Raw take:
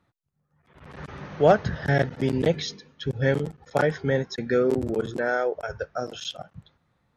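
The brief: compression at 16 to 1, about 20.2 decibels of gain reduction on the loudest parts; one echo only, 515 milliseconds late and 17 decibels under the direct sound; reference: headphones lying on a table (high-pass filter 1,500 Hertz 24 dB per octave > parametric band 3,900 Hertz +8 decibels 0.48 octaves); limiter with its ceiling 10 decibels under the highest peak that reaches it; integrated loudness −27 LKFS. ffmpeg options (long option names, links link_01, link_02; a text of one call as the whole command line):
ffmpeg -i in.wav -af "acompressor=threshold=-32dB:ratio=16,alimiter=level_in=5dB:limit=-24dB:level=0:latency=1,volume=-5dB,highpass=frequency=1500:width=0.5412,highpass=frequency=1500:width=1.3066,equalizer=frequency=3900:width_type=o:width=0.48:gain=8,aecho=1:1:515:0.141,volume=16dB" out.wav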